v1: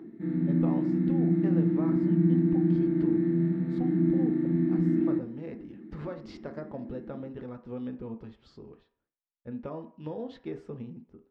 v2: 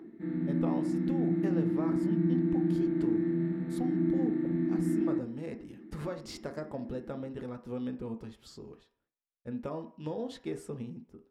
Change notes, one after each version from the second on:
speech: remove high-frequency loss of the air 220 metres
background: add parametric band 110 Hz −7.5 dB 2.6 octaves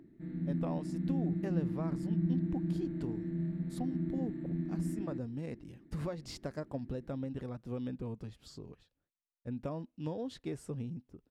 speech: add high-shelf EQ 10,000 Hz −2.5 dB
reverb: off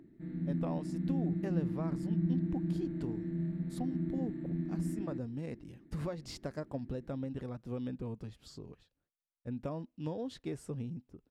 nothing changed

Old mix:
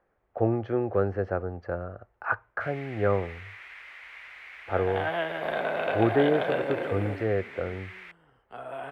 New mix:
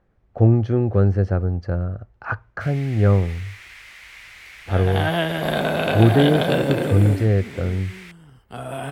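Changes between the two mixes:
second sound +5.0 dB
master: remove three-way crossover with the lows and the highs turned down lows −16 dB, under 370 Hz, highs −19 dB, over 2,700 Hz

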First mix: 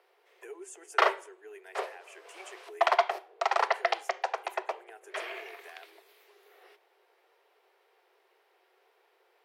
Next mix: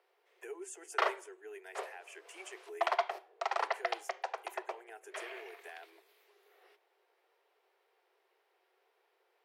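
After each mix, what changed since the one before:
background −7.0 dB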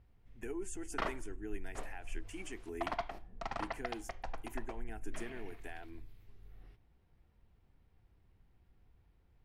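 background −7.0 dB
master: remove Butterworth high-pass 370 Hz 96 dB per octave

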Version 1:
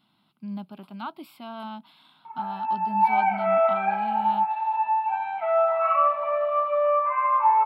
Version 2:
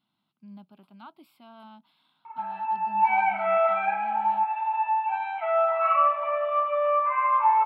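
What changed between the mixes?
speech −11.5 dB
background: add tilt shelving filter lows −4.5 dB, about 1,200 Hz

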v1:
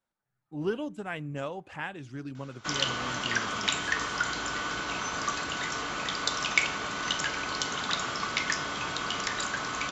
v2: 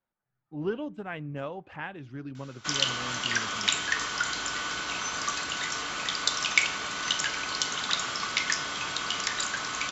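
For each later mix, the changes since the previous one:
speech: add high-frequency loss of the air 180 metres
background: add tilt shelving filter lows −4.5 dB, about 1,500 Hz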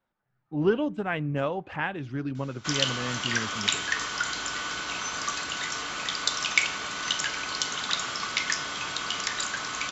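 speech +7.5 dB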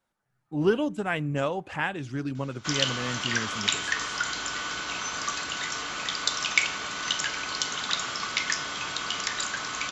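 speech: remove high-frequency loss of the air 180 metres

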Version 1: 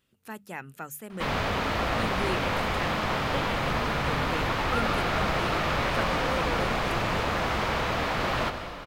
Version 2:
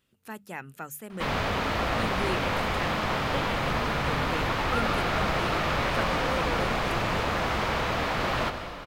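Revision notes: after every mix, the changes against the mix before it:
nothing changed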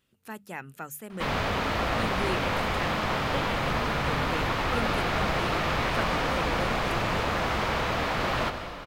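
second sound −5.5 dB

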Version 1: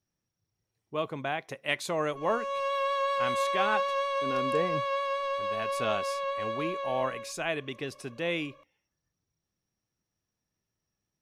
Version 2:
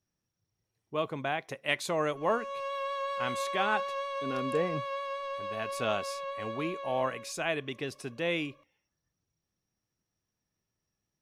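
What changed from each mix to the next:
background −5.5 dB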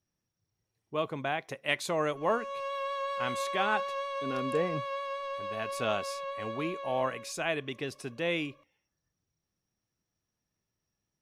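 nothing changed

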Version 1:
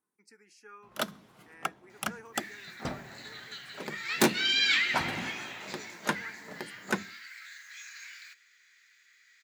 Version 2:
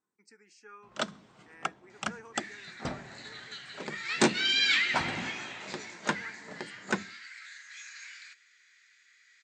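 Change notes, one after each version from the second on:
master: add linear-phase brick-wall low-pass 8,800 Hz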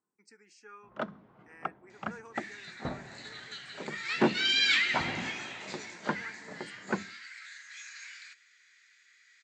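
first sound: add low-pass filter 1,400 Hz 12 dB per octave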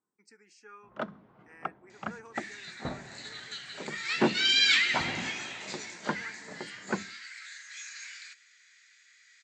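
second sound: add high-shelf EQ 4,200 Hz +7.5 dB

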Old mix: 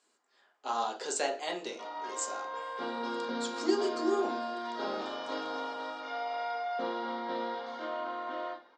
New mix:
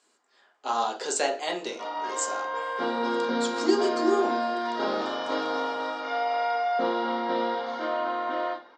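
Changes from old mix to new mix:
speech +5.5 dB
background: send +8.5 dB

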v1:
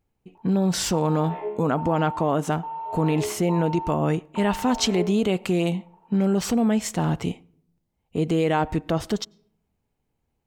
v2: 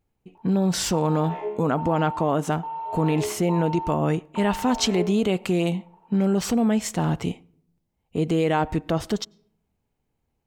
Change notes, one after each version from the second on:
background: remove high-frequency loss of the air 170 metres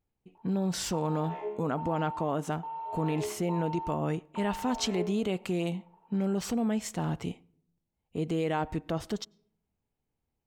speech −8.0 dB
background −6.0 dB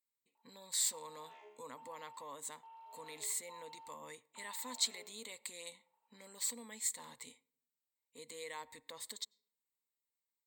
speech: add EQ curve with evenly spaced ripples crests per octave 1, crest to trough 15 dB
master: add first difference

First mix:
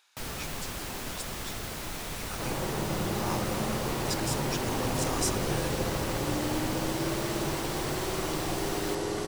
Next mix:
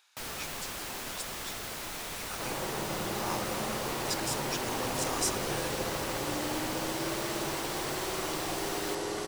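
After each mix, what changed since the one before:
master: add low-shelf EQ 270 Hz −10 dB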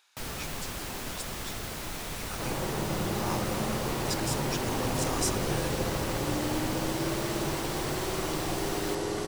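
master: add low-shelf EQ 270 Hz +10 dB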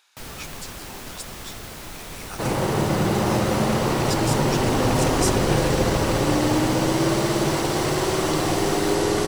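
speech +4.0 dB
second sound +10.5 dB

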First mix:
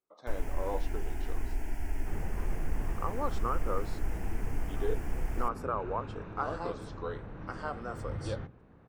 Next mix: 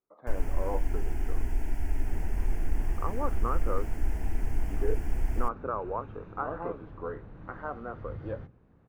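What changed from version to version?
speech: add low-pass filter 2,000 Hz 24 dB per octave
second sound −7.0 dB
master: add low-shelf EQ 310 Hz +5 dB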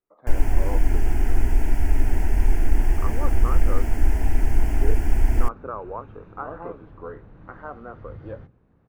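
first sound +10.0 dB

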